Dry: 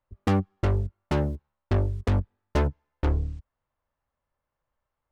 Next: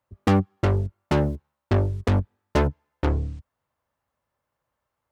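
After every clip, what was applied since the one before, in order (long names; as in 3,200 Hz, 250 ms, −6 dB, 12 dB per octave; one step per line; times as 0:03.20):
high-pass filter 80 Hz
level +4.5 dB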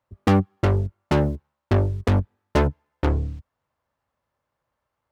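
running median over 5 samples
level +1.5 dB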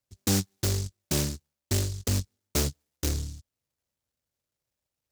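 short delay modulated by noise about 5,700 Hz, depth 0.33 ms
level −7.5 dB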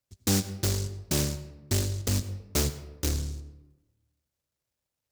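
convolution reverb RT60 1.0 s, pre-delay 81 ms, DRR 13 dB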